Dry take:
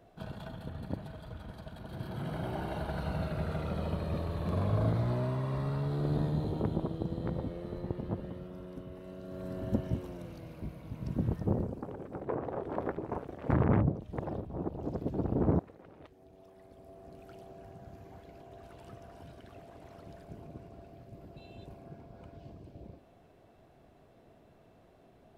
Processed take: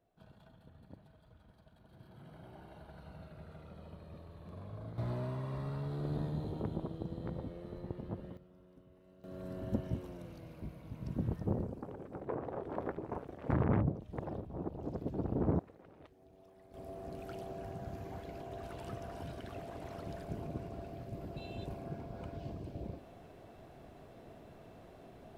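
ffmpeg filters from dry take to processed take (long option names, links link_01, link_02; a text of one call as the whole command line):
ffmpeg -i in.wav -af "asetnsamples=nb_out_samples=441:pad=0,asendcmd='4.98 volume volume -6dB;8.37 volume volume -16dB;9.24 volume volume -4dB;16.74 volume volume 6dB',volume=-17dB" out.wav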